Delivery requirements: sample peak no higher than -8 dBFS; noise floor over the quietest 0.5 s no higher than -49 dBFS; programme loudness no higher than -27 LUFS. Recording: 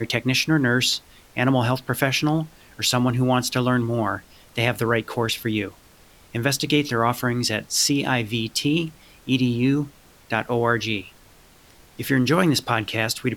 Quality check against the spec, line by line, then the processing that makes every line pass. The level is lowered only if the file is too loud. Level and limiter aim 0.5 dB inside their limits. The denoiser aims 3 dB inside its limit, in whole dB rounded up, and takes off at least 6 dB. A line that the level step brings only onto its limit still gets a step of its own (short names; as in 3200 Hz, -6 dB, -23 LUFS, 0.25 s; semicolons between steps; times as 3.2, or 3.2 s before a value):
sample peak -5.5 dBFS: fail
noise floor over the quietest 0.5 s -52 dBFS: OK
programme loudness -22.0 LUFS: fail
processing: gain -5.5 dB